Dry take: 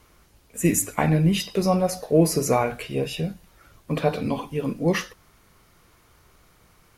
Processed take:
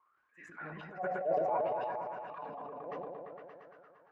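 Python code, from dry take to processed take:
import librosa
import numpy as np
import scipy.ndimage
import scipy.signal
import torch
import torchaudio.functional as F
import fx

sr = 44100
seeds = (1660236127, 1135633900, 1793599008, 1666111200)

p1 = fx.wah_lfo(x, sr, hz=0.37, low_hz=610.0, high_hz=1700.0, q=14.0)
p2 = fx.dynamic_eq(p1, sr, hz=230.0, q=1.4, threshold_db=-51.0, ratio=4.0, max_db=-4)
p3 = fx.stretch_vocoder(p2, sr, factor=0.59)
p4 = p3 + fx.echo_opening(p3, sr, ms=115, hz=400, octaves=1, feedback_pct=70, wet_db=0, dry=0)
p5 = fx.transient(p4, sr, attack_db=-7, sustain_db=8)
p6 = scipy.signal.sosfilt(scipy.signal.butter(2, 3900.0, 'lowpass', fs=sr, output='sos'), p5)
y = fx.sustainer(p6, sr, db_per_s=22.0)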